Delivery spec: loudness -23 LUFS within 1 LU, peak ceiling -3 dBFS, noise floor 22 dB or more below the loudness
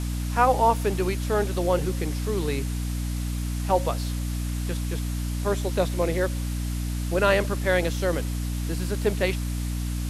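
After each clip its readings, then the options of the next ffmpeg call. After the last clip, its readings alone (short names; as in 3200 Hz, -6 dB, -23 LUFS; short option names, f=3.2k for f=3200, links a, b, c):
hum 60 Hz; harmonics up to 300 Hz; hum level -26 dBFS; noise floor -29 dBFS; noise floor target -48 dBFS; loudness -26.0 LUFS; peak -6.5 dBFS; loudness target -23.0 LUFS
-> -af "bandreject=f=60:t=h:w=4,bandreject=f=120:t=h:w=4,bandreject=f=180:t=h:w=4,bandreject=f=240:t=h:w=4,bandreject=f=300:t=h:w=4"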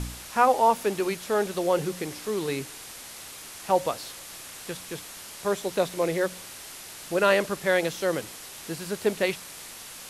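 hum none; noise floor -43 dBFS; noise floor target -49 dBFS
-> -af "afftdn=nr=6:nf=-43"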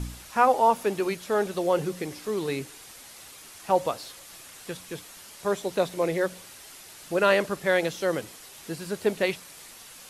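noise floor -47 dBFS; noise floor target -49 dBFS
-> -af "afftdn=nr=6:nf=-47"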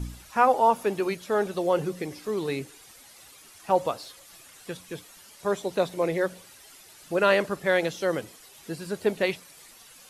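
noise floor -51 dBFS; loudness -26.5 LUFS; peak -7.0 dBFS; loudness target -23.0 LUFS
-> -af "volume=3.5dB"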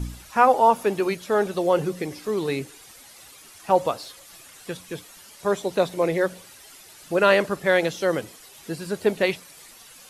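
loudness -23.0 LUFS; peak -3.5 dBFS; noise floor -48 dBFS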